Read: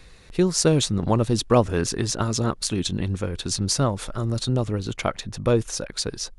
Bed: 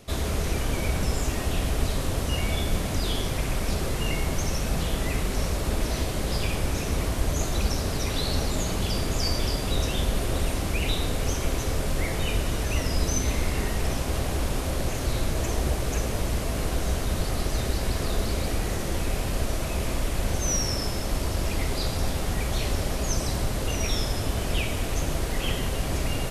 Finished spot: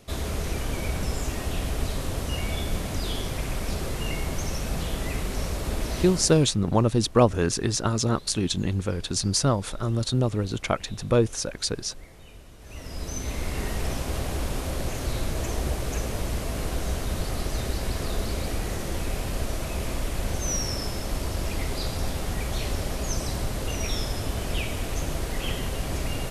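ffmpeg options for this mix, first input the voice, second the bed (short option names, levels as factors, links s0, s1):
-filter_complex "[0:a]adelay=5650,volume=0.944[s0];[1:a]volume=7.08,afade=t=out:st=6.01:d=0.5:silence=0.112202,afade=t=in:st=12.59:d=1.12:silence=0.105925[s1];[s0][s1]amix=inputs=2:normalize=0"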